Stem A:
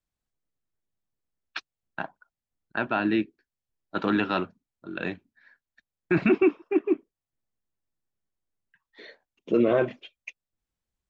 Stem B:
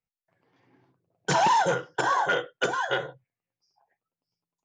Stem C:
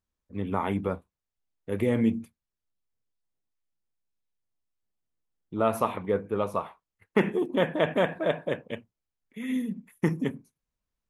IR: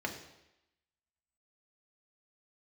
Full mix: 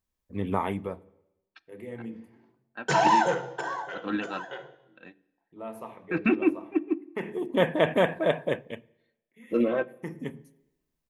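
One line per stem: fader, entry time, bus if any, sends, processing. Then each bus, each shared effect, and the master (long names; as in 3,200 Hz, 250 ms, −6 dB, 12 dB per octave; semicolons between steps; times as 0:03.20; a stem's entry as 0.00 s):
−0.5 dB, 0.00 s, send −16.5 dB, comb filter 3.8 ms, depth 47%; expander for the loud parts 2.5 to 1, over −38 dBFS
0:03.24 −5.5 dB → 0:03.90 −17.5 dB, 1.60 s, send −3.5 dB, noise gate with hold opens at −59 dBFS
+1.5 dB, 0.00 s, send −23.5 dB, high-shelf EQ 11,000 Hz +6 dB; notch filter 1,400 Hz, Q 11; automatic ducking −22 dB, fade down 1.00 s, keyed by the first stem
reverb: on, RT60 0.90 s, pre-delay 3 ms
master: no processing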